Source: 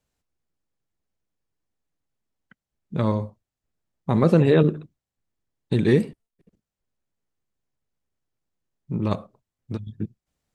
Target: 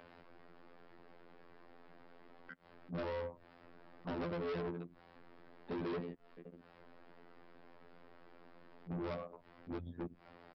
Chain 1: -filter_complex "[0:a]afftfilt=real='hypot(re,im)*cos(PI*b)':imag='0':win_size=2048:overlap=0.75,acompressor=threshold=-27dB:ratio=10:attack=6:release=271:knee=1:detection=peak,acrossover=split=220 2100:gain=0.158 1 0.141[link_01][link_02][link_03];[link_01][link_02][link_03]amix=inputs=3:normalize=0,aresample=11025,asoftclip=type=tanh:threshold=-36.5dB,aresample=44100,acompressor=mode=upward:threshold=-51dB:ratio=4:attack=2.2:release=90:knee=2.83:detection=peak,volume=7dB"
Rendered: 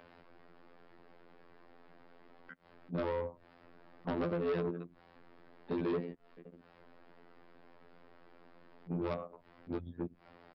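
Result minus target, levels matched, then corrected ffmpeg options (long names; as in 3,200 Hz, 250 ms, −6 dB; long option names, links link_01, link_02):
soft clipping: distortion −4 dB
-filter_complex "[0:a]afftfilt=real='hypot(re,im)*cos(PI*b)':imag='0':win_size=2048:overlap=0.75,acompressor=threshold=-27dB:ratio=10:attack=6:release=271:knee=1:detection=peak,acrossover=split=220 2100:gain=0.158 1 0.141[link_01][link_02][link_03];[link_01][link_02][link_03]amix=inputs=3:normalize=0,aresample=11025,asoftclip=type=tanh:threshold=-44dB,aresample=44100,acompressor=mode=upward:threshold=-51dB:ratio=4:attack=2.2:release=90:knee=2.83:detection=peak,volume=7dB"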